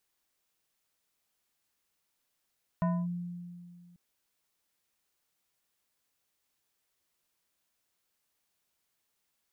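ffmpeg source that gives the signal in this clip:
-f lavfi -i "aevalsrc='0.0631*pow(10,-3*t/2.2)*sin(2*PI*175*t+0.71*clip(1-t/0.25,0,1)*sin(2*PI*4.73*175*t))':d=1.14:s=44100"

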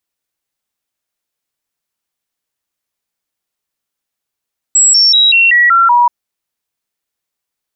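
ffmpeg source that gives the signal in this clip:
-f lavfi -i "aevalsrc='0.562*clip(min(mod(t,0.19),0.19-mod(t,0.19))/0.005,0,1)*sin(2*PI*7710*pow(2,-floor(t/0.19)/2)*mod(t,0.19))':d=1.33:s=44100"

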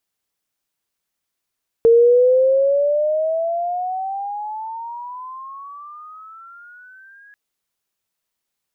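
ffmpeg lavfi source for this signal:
-f lavfi -i "aevalsrc='pow(10,(-7.5-36*t/5.49)/20)*sin(2*PI*456*5.49/(22.5*log(2)/12)*(exp(22.5*log(2)/12*t/5.49)-1))':d=5.49:s=44100"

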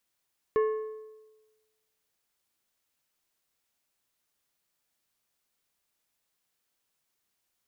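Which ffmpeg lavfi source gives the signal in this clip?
-f lavfi -i "aevalsrc='0.1*pow(10,-3*t/1.2)*sin(2*PI*434*t)+0.0316*pow(10,-3*t/0.912)*sin(2*PI*1085*t)+0.01*pow(10,-3*t/0.792)*sin(2*PI*1736*t)+0.00316*pow(10,-3*t/0.74)*sin(2*PI*2170*t)+0.001*pow(10,-3*t/0.684)*sin(2*PI*2821*t)':d=1.55:s=44100"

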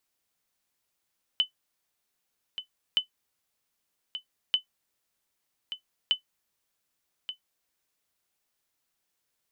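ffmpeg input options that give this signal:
-f lavfi -i "aevalsrc='0.188*(sin(2*PI*3020*mod(t,1.57))*exp(-6.91*mod(t,1.57)/0.11)+0.266*sin(2*PI*3020*max(mod(t,1.57)-1.18,0))*exp(-6.91*max(mod(t,1.57)-1.18,0)/0.11))':d=6.28:s=44100"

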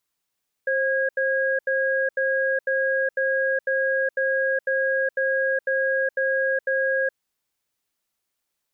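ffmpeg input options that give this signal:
-f lavfi -i "aevalsrc='0.075*(sin(2*PI*532*t)+sin(2*PI*1640*t))*clip(min(mod(t,0.5),0.42-mod(t,0.5))/0.005,0,1)':d=6.43:s=44100"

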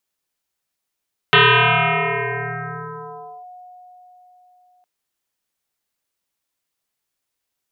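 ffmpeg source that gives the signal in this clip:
-f lavfi -i "aevalsrc='0.422*pow(10,-3*t/4.41)*sin(2*PI*726*t+9.3*clip(1-t/2.12,0,1)*sin(2*PI*0.39*726*t))':d=3.51:s=44100"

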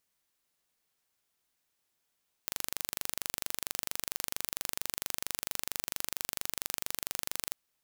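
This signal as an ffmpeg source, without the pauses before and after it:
-f lavfi -i "aevalsrc='0.531*eq(mod(n,1807),0)':d=5.08:s=44100"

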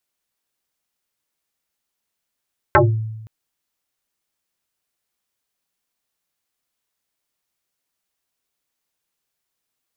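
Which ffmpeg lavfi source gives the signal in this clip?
-f lavfi -i "aevalsrc='0.473*pow(10,-3*t/1.04)*sin(2*PI*110*t+8.2*pow(10,-3*t/0.29)*sin(2*PI*2.19*110*t))':d=0.52:s=44100"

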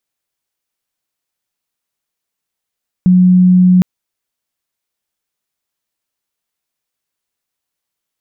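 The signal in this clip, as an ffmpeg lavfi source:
-f lavfi -i "sine=f=182:d=0.76:r=44100,volume=13.56dB"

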